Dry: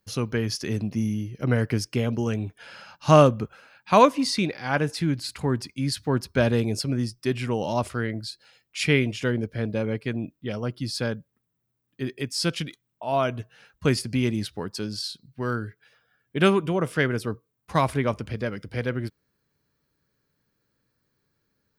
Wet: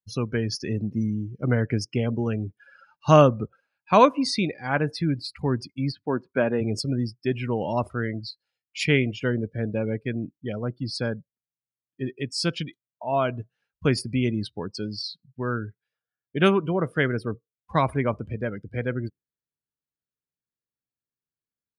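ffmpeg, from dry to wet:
-filter_complex "[0:a]asplit=3[a][b][c];[a]afade=t=out:st=5.91:d=0.02[d];[b]highpass=220,lowpass=2.6k,afade=t=in:st=5.91:d=0.02,afade=t=out:st=6.6:d=0.02[e];[c]afade=t=in:st=6.6:d=0.02[f];[d][e][f]amix=inputs=3:normalize=0,afftdn=nr=26:nf=-36"

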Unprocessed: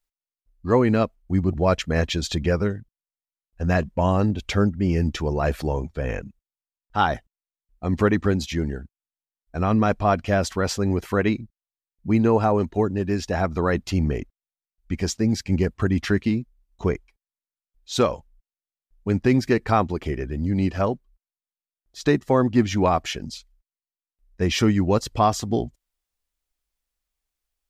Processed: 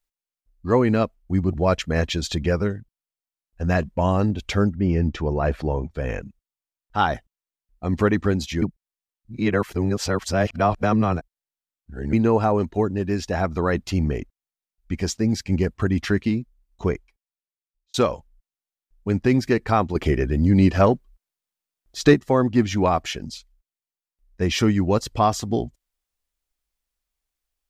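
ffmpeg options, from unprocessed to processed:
-filter_complex "[0:a]asettb=1/sr,asplit=3[a][b][c];[a]atrim=end=4.754[d];[b]atrim=start=4.75:end=5.91,asetpts=PTS-STARTPTS,afade=t=in:d=0.004:c=qsin,afade=t=out:st=1.156:d=0.004:c=qsin,aemphasis=mode=reproduction:type=75fm[e];[c]atrim=start=5.906[f];[d][e]acrossfade=d=0.004:c1=hsin:c2=qsin[g];[g][f]acrossfade=d=0.004:c1=qsin:c2=hsin,asettb=1/sr,asplit=3[h][i][j];[h]atrim=end=19.954[k];[i]atrim=start=19.95:end=22.14,asetpts=PTS-STARTPTS,afade=t=in:d=0.004:c=qsin,afade=t=out:st=2.186:d=0.004:c=qsin,acontrast=73[l];[j]atrim=start=22.136[m];[k][l]acrossfade=d=0.004:c1=hsin:c2=qsin[n];[n][m]acrossfade=d=0.004:c1=qsin:c2=hsin,asplit=4[o][p][q][r];[o]atrim=end=8.622[s];[p]atrim=start=8.618:end=12.132,asetpts=PTS-STARTPTS,areverse[t];[q]atrim=start=12.128:end=17.94,asetpts=PTS-STARTPTS,afade=t=out:st=4.772:d=1.04[u];[r]atrim=start=17.94,asetpts=PTS-STARTPTS,afade=t=in:d=0.004:c=hsin[v];[s][t]acrossfade=d=0.004:c1=hsin:c2=hsin[w];[u][v]concat=n=2:v=0:a=1[x];[w][x]acrossfade=d=0.004:c1=hsin:c2=hsin"

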